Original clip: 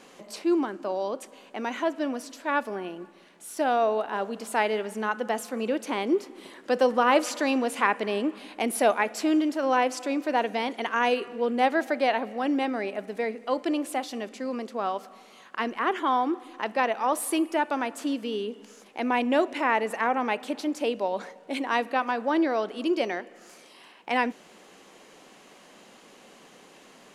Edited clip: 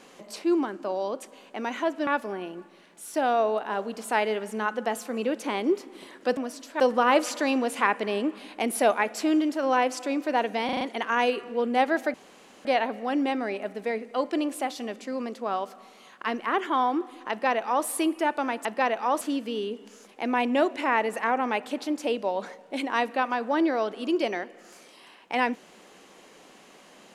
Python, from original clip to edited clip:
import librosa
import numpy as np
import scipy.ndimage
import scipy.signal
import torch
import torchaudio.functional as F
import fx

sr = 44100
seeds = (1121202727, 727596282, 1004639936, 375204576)

y = fx.edit(x, sr, fx.move(start_s=2.07, length_s=0.43, to_s=6.8),
    fx.stutter(start_s=10.65, slice_s=0.04, count=5),
    fx.insert_room_tone(at_s=11.98, length_s=0.51),
    fx.duplicate(start_s=16.63, length_s=0.56, to_s=17.98), tone=tone)